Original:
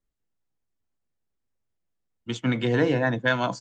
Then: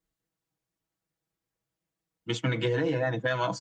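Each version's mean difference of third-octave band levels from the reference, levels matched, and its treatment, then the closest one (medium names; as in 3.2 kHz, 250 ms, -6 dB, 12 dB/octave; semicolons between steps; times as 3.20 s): 3.0 dB: high-pass 49 Hz; comb 6.2 ms, depth 93%; peak limiter -11 dBFS, peak gain reduction 6.5 dB; compression, threshold -24 dBFS, peak gain reduction 8 dB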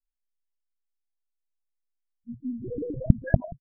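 17.5 dB: treble shelf 2.5 kHz -2.5 dB; in parallel at -1.5 dB: peak limiter -19 dBFS, peak gain reduction 9.5 dB; on the sum: loudest bins only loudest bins 1; LPC vocoder at 8 kHz pitch kept; trim -4.5 dB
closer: first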